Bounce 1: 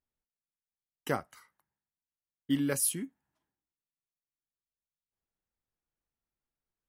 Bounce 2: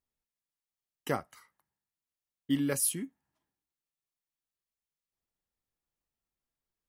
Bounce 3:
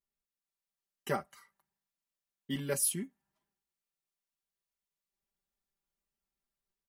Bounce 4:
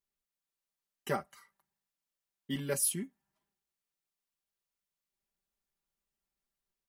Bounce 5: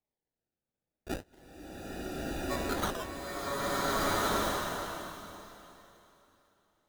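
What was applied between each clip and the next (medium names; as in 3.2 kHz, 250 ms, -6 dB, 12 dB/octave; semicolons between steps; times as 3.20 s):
band-stop 1.5 kHz, Q 16
comb 5.1 ms, depth 94%; level rider gain up to 4 dB; trim -8 dB
hard clipper -19.5 dBFS, distortion -37 dB
ring modulator 840 Hz; decimation with a swept rate 29×, swing 100% 0.3 Hz; swelling reverb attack 1560 ms, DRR -9 dB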